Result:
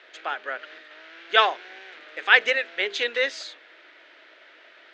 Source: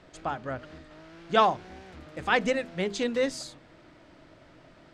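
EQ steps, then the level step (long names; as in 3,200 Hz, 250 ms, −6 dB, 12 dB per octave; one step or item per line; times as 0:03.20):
elliptic band-pass filter 400–6,400 Hz, stop band 50 dB
flat-topped bell 2,400 Hz +11.5 dB
0.0 dB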